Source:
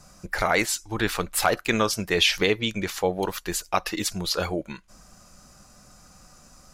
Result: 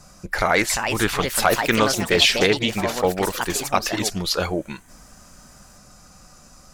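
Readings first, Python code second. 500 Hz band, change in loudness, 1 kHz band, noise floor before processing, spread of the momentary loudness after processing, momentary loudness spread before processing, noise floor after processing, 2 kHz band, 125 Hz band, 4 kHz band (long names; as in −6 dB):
+4.5 dB, +4.5 dB, +5.0 dB, −54 dBFS, 9 LU, 10 LU, −49 dBFS, +4.5 dB, +4.5 dB, +4.5 dB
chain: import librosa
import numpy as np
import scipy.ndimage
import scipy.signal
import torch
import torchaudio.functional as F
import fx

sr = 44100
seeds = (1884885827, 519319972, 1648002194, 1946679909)

y = fx.echo_pitch(x, sr, ms=435, semitones=4, count=3, db_per_echo=-6.0)
y = fx.doppler_dist(y, sr, depth_ms=0.11)
y = F.gain(torch.from_numpy(y), 3.5).numpy()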